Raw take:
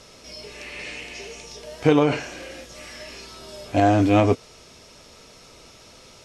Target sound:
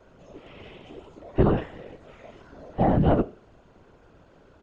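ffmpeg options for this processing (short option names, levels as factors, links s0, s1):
-af "lowpass=1200,lowshelf=f=120:t=q:w=3:g=-10,asetrate=41625,aresample=44100,atempo=1.05946,flanger=delay=9.3:depth=1.1:regen=88:speed=0.78:shape=triangular,afftfilt=real='hypot(re,im)*cos(2*PI*random(0))':imag='hypot(re,im)*sin(2*PI*random(1))':win_size=512:overlap=0.75,afreqshift=-140,asetrate=59535,aresample=44100,volume=2.24"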